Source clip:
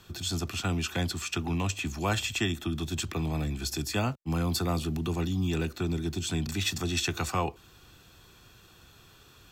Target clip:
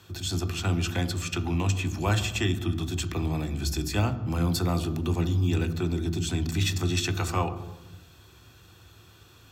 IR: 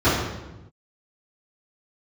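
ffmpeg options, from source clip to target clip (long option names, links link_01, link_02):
-filter_complex "[0:a]highpass=68,asplit=2[link_01][link_02];[1:a]atrim=start_sample=2205,lowshelf=frequency=120:gain=6[link_03];[link_02][link_03]afir=irnorm=-1:irlink=0,volume=-30.5dB[link_04];[link_01][link_04]amix=inputs=2:normalize=0"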